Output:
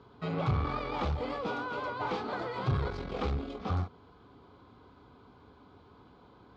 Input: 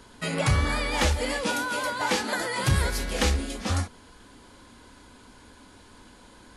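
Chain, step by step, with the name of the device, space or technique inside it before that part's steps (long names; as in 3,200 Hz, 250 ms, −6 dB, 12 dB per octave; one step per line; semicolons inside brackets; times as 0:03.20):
guitar amplifier (tube saturation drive 25 dB, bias 0.65; bass and treble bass +13 dB, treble +5 dB; loudspeaker in its box 110–3,500 Hz, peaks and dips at 220 Hz −6 dB, 420 Hz +9 dB, 750 Hz +8 dB, 1,200 Hz +10 dB, 1,800 Hz −9 dB, 2,800 Hz −5 dB)
level −6.5 dB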